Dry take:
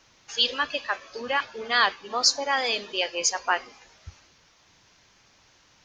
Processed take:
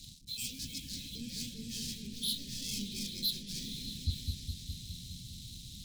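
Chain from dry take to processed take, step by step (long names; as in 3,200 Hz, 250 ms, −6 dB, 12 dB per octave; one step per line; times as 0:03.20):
hearing-aid frequency compression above 1,600 Hz 1.5 to 1
reversed playback
downward compressor 8 to 1, threshold −38 dBFS, peak gain reduction 20 dB
reversed playback
leveller curve on the samples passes 5
Chebyshev band-stop filter 200–4,400 Hz, order 3
echo whose low-pass opens from repeat to repeat 206 ms, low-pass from 750 Hz, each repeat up 1 octave, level −3 dB
level +1.5 dB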